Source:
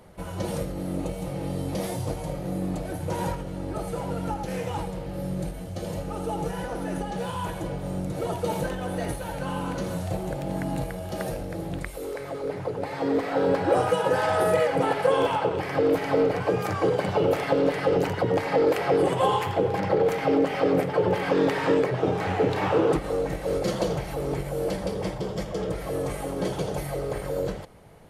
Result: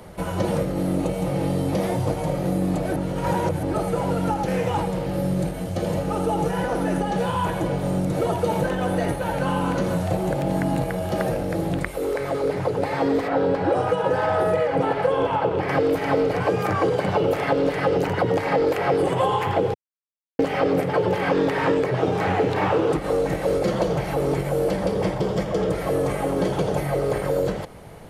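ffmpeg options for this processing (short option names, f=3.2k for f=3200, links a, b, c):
-filter_complex "[0:a]asplit=3[a][b][c];[a]afade=t=out:st=13.27:d=0.02[d];[b]lowpass=f=1.6k:p=1,afade=t=in:st=13.27:d=0.02,afade=t=out:st=15.68:d=0.02[e];[c]afade=t=in:st=15.68:d=0.02[f];[d][e][f]amix=inputs=3:normalize=0,asplit=5[g][h][i][j][k];[g]atrim=end=2.962[l];[h]atrim=start=2.958:end=3.632,asetpts=PTS-STARTPTS,areverse[m];[i]atrim=start=3.628:end=19.74,asetpts=PTS-STARTPTS,afade=t=out:st=16.108:d=0.004:c=hsin[n];[j]atrim=start=19.74:end=20.39,asetpts=PTS-STARTPTS,volume=0[o];[k]atrim=start=20.39,asetpts=PTS-STARTPTS,afade=t=in:d=0.004:c=hsin[p];[l][m]acrossfade=d=0.004:c1=hsin:c2=hsin[q];[n][o][p]concat=n=3:v=0:a=1[r];[q][r]acrossfade=d=0.004:c1=hsin:c2=hsin,acrossover=split=100|2800[s][t][u];[s]acompressor=threshold=-47dB:ratio=4[v];[t]acompressor=threshold=-28dB:ratio=4[w];[u]acompressor=threshold=-53dB:ratio=4[x];[v][w][x]amix=inputs=3:normalize=0,volume=9dB"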